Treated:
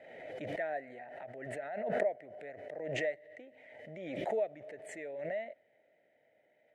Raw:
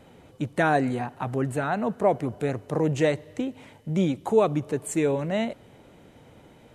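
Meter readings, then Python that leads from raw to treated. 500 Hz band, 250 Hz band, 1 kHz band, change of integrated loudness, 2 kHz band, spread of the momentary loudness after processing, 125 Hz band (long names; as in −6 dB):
−11.0 dB, −21.0 dB, −15.0 dB, −13.0 dB, −10.0 dB, 15 LU, −22.5 dB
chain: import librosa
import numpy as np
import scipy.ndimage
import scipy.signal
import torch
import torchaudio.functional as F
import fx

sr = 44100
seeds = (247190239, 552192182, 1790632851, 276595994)

y = fx.double_bandpass(x, sr, hz=1100.0, octaves=1.6)
y = fx.pre_swell(y, sr, db_per_s=36.0)
y = F.gain(torch.from_numpy(y), -8.0).numpy()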